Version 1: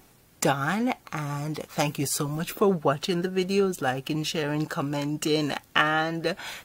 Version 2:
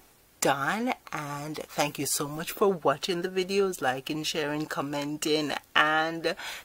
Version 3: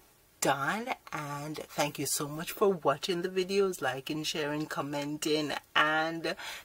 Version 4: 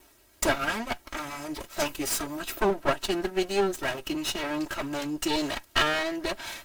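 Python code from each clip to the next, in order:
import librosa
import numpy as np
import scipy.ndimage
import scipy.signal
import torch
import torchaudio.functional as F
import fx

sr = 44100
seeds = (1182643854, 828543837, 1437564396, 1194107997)

y1 = fx.peak_eq(x, sr, hz=150.0, db=-9.0, octaves=1.5)
y2 = fx.notch_comb(y1, sr, f0_hz=250.0)
y2 = y2 * librosa.db_to_amplitude(-2.0)
y3 = fx.lower_of_two(y2, sr, delay_ms=3.1)
y3 = y3 * librosa.db_to_amplitude(4.5)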